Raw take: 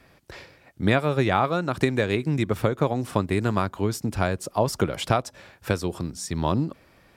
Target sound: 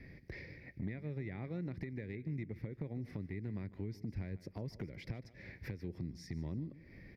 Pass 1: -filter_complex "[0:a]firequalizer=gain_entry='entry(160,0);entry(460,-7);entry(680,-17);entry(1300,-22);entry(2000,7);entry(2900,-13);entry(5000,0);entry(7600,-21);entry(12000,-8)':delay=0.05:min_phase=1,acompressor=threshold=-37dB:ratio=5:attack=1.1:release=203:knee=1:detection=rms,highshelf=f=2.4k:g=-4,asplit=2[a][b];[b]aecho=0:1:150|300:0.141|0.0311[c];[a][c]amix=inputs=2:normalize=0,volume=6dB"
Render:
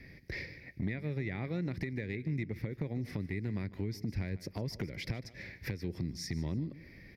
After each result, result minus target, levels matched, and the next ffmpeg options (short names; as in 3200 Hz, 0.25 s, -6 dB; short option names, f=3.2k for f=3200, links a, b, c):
4000 Hz band +7.0 dB; compressor: peak gain reduction -5 dB
-filter_complex "[0:a]firequalizer=gain_entry='entry(160,0);entry(460,-7);entry(680,-17);entry(1300,-22);entry(2000,7);entry(2900,-13);entry(5000,0);entry(7600,-21);entry(12000,-8)':delay=0.05:min_phase=1,acompressor=threshold=-37dB:ratio=5:attack=1.1:release=203:knee=1:detection=rms,highshelf=f=2.4k:g=-14,asplit=2[a][b];[b]aecho=0:1:150|300:0.141|0.0311[c];[a][c]amix=inputs=2:normalize=0,volume=6dB"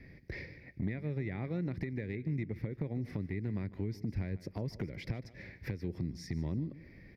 compressor: peak gain reduction -5 dB
-filter_complex "[0:a]firequalizer=gain_entry='entry(160,0);entry(460,-7);entry(680,-17);entry(1300,-22);entry(2000,7);entry(2900,-13);entry(5000,0);entry(7600,-21);entry(12000,-8)':delay=0.05:min_phase=1,acompressor=threshold=-43.5dB:ratio=5:attack=1.1:release=203:knee=1:detection=rms,highshelf=f=2.4k:g=-14,asplit=2[a][b];[b]aecho=0:1:150|300:0.141|0.0311[c];[a][c]amix=inputs=2:normalize=0,volume=6dB"